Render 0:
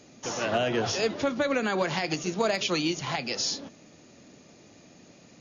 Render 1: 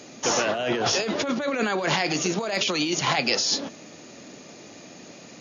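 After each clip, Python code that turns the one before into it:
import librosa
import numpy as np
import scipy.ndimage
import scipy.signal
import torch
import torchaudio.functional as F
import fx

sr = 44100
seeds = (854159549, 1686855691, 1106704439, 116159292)

y = fx.highpass(x, sr, hz=250.0, slope=6)
y = fx.over_compress(y, sr, threshold_db=-32.0, ratio=-1.0)
y = y * 10.0 ** (7.5 / 20.0)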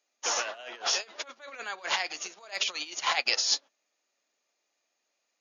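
y = scipy.signal.sosfilt(scipy.signal.butter(2, 790.0, 'highpass', fs=sr, output='sos'), x)
y = fx.upward_expand(y, sr, threshold_db=-43.0, expansion=2.5)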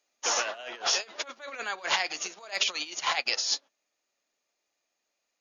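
y = fx.low_shelf(x, sr, hz=100.0, db=10.5)
y = fx.rider(y, sr, range_db=3, speed_s=0.5)
y = y * 10.0 ** (1.0 / 20.0)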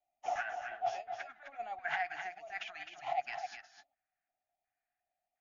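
y = fx.filter_lfo_notch(x, sr, shape='square', hz=1.4, low_hz=530.0, high_hz=1600.0, q=0.7)
y = fx.curve_eq(y, sr, hz=(120.0, 180.0, 510.0, 730.0, 1000.0, 1600.0, 4300.0), db=(0, -11, -22, 9, -19, -1, -30))
y = y + 10.0 ** (-7.5 / 20.0) * np.pad(y, (int(259 * sr / 1000.0), 0))[:len(y)]
y = y * 10.0 ** (1.0 / 20.0)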